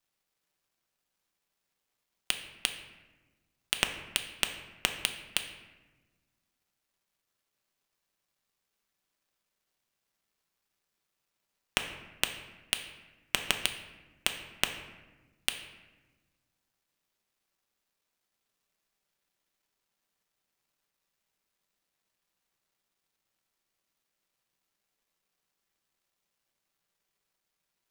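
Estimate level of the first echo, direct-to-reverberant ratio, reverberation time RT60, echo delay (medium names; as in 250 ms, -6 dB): no echo, 5.0 dB, 1.2 s, no echo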